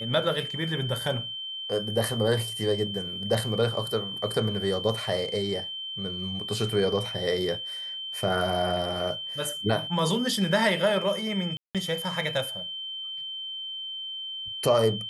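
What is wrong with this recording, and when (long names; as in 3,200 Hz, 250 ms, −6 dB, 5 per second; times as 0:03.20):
whistle 3,100 Hz −33 dBFS
0:11.57–0:11.75: drop-out 177 ms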